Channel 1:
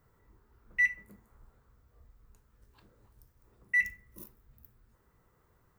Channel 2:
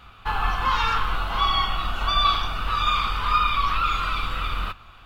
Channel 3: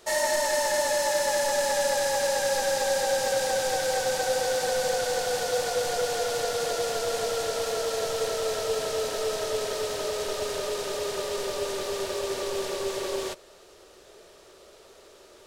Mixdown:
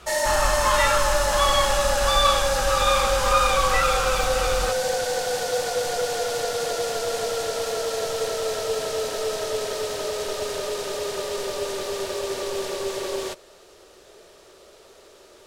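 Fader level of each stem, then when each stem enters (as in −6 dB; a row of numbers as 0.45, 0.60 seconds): −1.5, 0.0, +2.0 decibels; 0.00, 0.00, 0.00 seconds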